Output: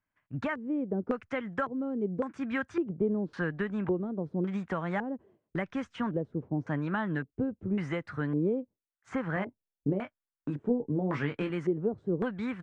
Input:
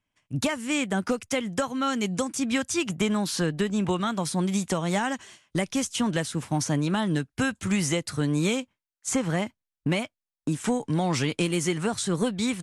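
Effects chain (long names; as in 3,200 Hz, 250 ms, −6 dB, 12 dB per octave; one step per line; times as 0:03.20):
0:09.34–0:11.50: double-tracking delay 21 ms −7 dB
auto-filter low-pass square 0.9 Hz 440–1,600 Hz
level −7 dB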